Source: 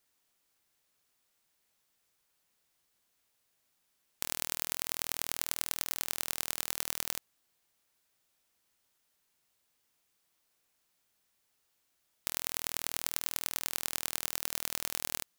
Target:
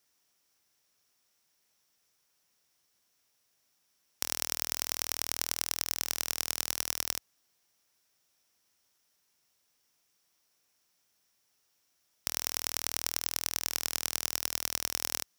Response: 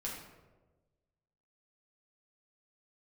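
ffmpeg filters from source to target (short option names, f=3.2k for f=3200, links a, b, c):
-af "highpass=54,equalizer=f=5.6k:w=6:g=10,volume=1dB"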